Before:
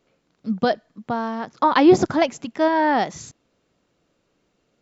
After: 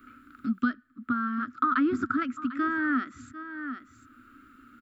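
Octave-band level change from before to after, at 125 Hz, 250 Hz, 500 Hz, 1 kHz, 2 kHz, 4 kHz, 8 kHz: -13.0 dB, -6.5 dB, -20.0 dB, -9.0 dB, -3.0 dB, -19.0 dB, no reading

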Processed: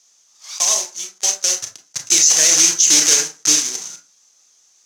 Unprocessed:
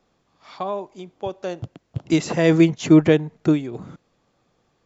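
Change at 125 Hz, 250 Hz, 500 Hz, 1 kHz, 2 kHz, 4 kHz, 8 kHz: under -20 dB, -16.5 dB, -11.5 dB, -2.0 dB, +4.5 dB, +18.0 dB, no reading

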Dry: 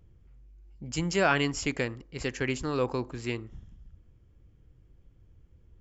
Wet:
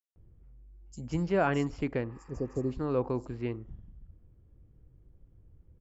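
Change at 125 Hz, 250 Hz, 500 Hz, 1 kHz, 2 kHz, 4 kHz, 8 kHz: 0.0 dB, 0.0 dB, -0.5 dB, -3.0 dB, -9.0 dB, -14.5 dB, no reading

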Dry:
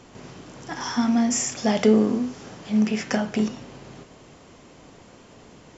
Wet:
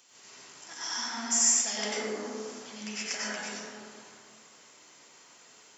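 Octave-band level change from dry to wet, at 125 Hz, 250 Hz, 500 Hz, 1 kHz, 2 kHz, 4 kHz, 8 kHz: under -20 dB, -20.5 dB, -13.5 dB, -8.0 dB, -3.0 dB, +0.5 dB, no reading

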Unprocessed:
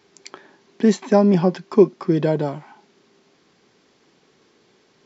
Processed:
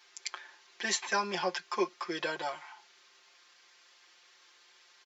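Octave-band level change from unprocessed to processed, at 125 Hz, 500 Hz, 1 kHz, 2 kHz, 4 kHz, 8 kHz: -29.5 dB, -18.5 dB, -6.0 dB, +2.0 dB, +2.5 dB, no reading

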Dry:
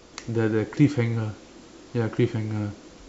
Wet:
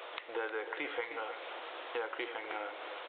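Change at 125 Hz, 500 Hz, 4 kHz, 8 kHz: under -40 dB, -10.5 dB, -2.0 dB, no reading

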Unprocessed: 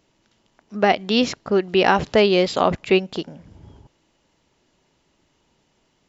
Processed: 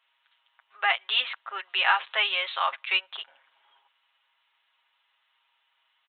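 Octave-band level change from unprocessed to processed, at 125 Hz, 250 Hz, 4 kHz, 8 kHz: under -40 dB, under -35 dB, -0.5 dB, no reading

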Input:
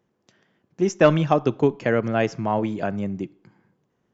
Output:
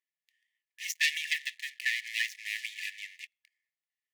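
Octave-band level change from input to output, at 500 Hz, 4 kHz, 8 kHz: under -40 dB, +5.5 dB, no reading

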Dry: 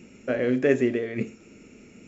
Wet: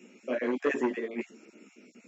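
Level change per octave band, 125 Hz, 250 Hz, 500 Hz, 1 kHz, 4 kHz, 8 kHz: under -20 dB, -7.0 dB, -7.0 dB, +4.0 dB, -5.0 dB, no reading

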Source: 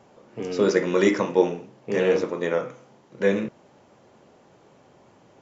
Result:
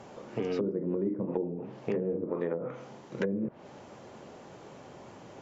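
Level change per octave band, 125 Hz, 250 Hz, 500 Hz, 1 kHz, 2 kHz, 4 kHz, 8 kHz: -4.0 dB, -6.5 dB, -10.0 dB, -12.0 dB, -16.5 dB, under -15 dB, no reading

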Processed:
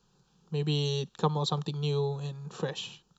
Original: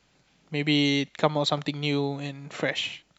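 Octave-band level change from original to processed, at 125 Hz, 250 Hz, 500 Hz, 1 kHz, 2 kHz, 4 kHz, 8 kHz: +1.5 dB, -8.5 dB, -3.5 dB, -4.5 dB, -16.0 dB, -7.5 dB, no reading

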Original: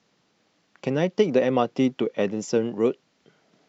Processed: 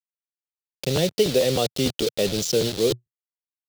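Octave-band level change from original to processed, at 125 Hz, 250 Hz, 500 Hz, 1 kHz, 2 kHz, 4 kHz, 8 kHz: +4.0 dB, -3.0 dB, +1.0 dB, -4.0 dB, +0.5 dB, +13.0 dB, no reading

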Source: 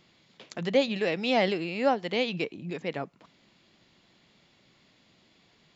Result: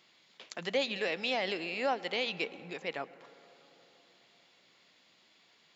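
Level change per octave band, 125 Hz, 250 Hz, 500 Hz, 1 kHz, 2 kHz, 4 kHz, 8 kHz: -13.5 dB, -11.5 dB, -7.5 dB, -5.5 dB, -2.0 dB, -2.0 dB, no reading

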